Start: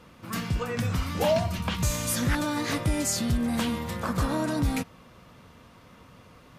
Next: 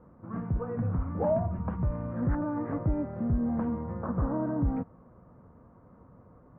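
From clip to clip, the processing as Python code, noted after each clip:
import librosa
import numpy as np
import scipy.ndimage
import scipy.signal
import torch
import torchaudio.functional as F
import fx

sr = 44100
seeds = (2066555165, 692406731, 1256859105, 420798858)

y = scipy.signal.sosfilt(scipy.signal.bessel(6, 840.0, 'lowpass', norm='mag', fs=sr, output='sos'), x)
y = y * 10.0 ** (-1.5 / 20.0)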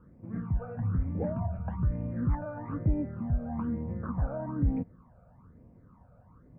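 y = fx.phaser_stages(x, sr, stages=12, low_hz=320.0, high_hz=1300.0, hz=1.1, feedback_pct=35)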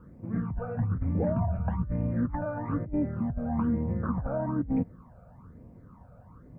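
y = fx.over_compress(x, sr, threshold_db=-30.0, ratio=-0.5)
y = y * 10.0 ** (3.5 / 20.0)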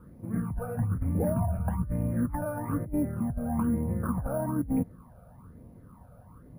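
y = np.repeat(x[::4], 4)[:len(x)]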